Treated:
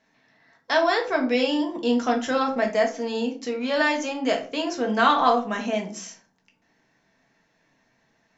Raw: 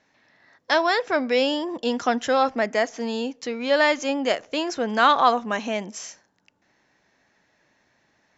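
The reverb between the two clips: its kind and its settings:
rectangular room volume 220 cubic metres, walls furnished, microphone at 1.6 metres
level −4 dB

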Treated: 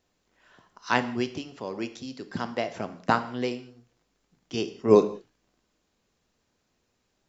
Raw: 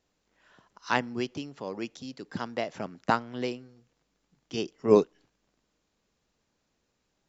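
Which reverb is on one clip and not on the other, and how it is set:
reverb whose tail is shaped and stops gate 220 ms falling, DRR 9 dB
level +2 dB

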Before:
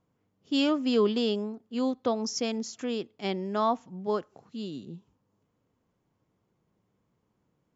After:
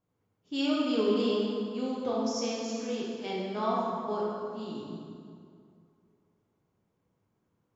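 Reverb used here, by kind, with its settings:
dense smooth reverb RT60 2.4 s, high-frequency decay 0.65×, DRR −6.5 dB
level −9 dB

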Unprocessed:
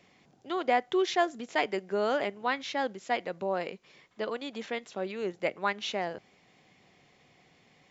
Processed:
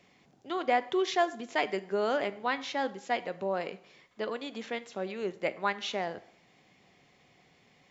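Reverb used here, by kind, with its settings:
dense smooth reverb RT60 0.68 s, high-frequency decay 0.85×, DRR 13.5 dB
level −1 dB

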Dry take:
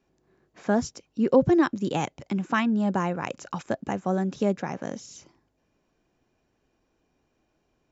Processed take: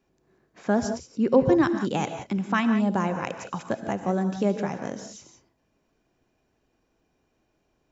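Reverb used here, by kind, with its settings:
reverb whose tail is shaped and stops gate 200 ms rising, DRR 7.5 dB

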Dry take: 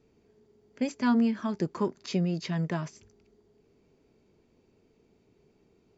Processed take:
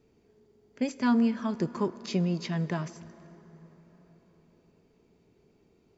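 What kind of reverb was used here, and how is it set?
dense smooth reverb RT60 4.7 s, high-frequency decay 0.55×, DRR 15.5 dB

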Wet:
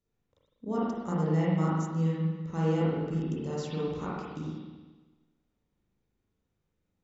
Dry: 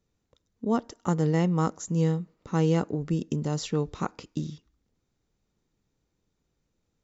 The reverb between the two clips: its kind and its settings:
spring reverb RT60 1.3 s, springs 38/49 ms, chirp 80 ms, DRR −7 dB
level −10.5 dB

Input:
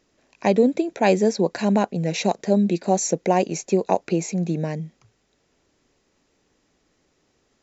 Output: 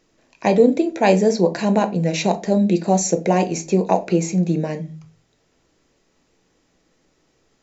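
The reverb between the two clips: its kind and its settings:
rectangular room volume 160 cubic metres, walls furnished, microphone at 0.66 metres
level +2 dB

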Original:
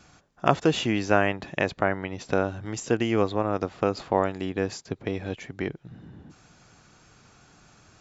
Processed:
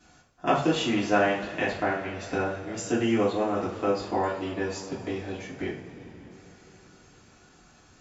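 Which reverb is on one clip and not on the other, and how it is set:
coupled-rooms reverb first 0.42 s, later 4.7 s, from −21 dB, DRR −8.5 dB
level −10 dB

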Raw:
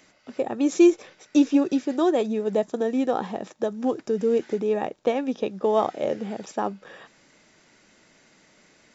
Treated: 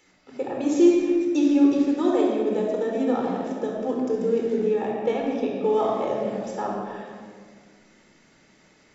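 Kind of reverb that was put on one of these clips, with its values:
rectangular room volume 3,100 cubic metres, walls mixed, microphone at 4.2 metres
level −6.5 dB

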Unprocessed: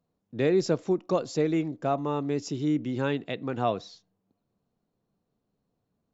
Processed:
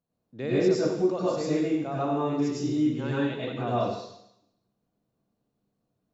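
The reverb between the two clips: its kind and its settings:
dense smooth reverb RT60 0.8 s, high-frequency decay 1×, pre-delay 85 ms, DRR −8 dB
level −8.5 dB

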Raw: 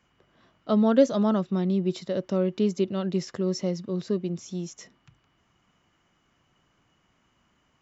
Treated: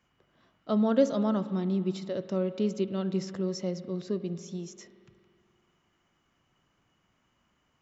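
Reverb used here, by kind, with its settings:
spring reverb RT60 2.3 s, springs 47 ms, chirp 30 ms, DRR 12.5 dB
level −4.5 dB

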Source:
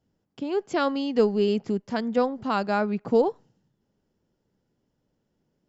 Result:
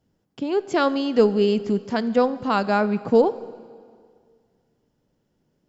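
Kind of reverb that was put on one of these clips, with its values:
dense smooth reverb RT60 2 s, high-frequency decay 0.95×, DRR 15 dB
level +4 dB

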